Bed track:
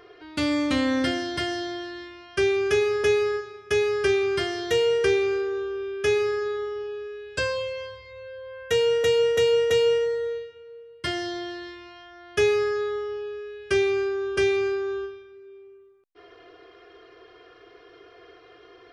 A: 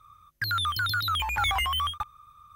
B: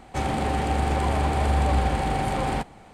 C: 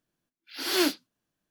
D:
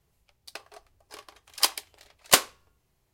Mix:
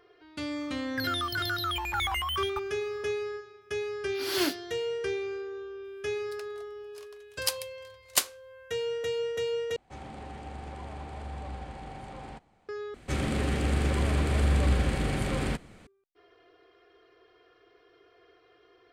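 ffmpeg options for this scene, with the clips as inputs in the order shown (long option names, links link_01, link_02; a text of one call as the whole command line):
ffmpeg -i bed.wav -i cue0.wav -i cue1.wav -i cue2.wav -i cue3.wav -filter_complex "[2:a]asplit=2[link_01][link_02];[0:a]volume=-10.5dB[link_03];[4:a]highshelf=frequency=2700:gain=8.5[link_04];[link_01]lowpass=8000[link_05];[link_02]equalizer=frequency=820:width_type=o:width=0.56:gain=-15[link_06];[link_03]asplit=3[link_07][link_08][link_09];[link_07]atrim=end=9.764[link_10];[link_05]atrim=end=2.93,asetpts=PTS-STARTPTS,volume=-17.5dB[link_11];[link_08]atrim=start=12.686:end=12.944[link_12];[link_06]atrim=end=2.93,asetpts=PTS-STARTPTS,volume=-1.5dB[link_13];[link_09]atrim=start=15.866[link_14];[1:a]atrim=end=2.55,asetpts=PTS-STARTPTS,volume=-4dB,afade=type=in:duration=0.004:curve=hsin,afade=type=out:start_time=2.546:duration=0.004:curve=hsin,adelay=560[link_15];[3:a]atrim=end=1.5,asetpts=PTS-STARTPTS,volume=-4dB,afade=type=in:duration=0.004:curve=hsin,afade=type=out:start_time=1.496:duration=0.004:curve=hsin,adelay=159201S[link_16];[link_04]atrim=end=3.13,asetpts=PTS-STARTPTS,volume=-13dB,afade=type=in:duration=0.004:curve=hsin,afade=type=out:start_time=3.126:duration=0.004:curve=hsin,adelay=5840[link_17];[link_10][link_11]acrossfade=duration=0.004:curve1=hsin:curve2=hsin[link_18];[link_18][link_12]acrossfade=duration=0.004:curve1=hsin:curve2=hsin[link_19];[link_19][link_13]acrossfade=duration=0.004:curve1=hsin:curve2=hsin[link_20];[link_20][link_14]acrossfade=duration=0.004:curve1=hsin:curve2=hsin[link_21];[link_21][link_15][link_16][link_17]amix=inputs=4:normalize=0" out.wav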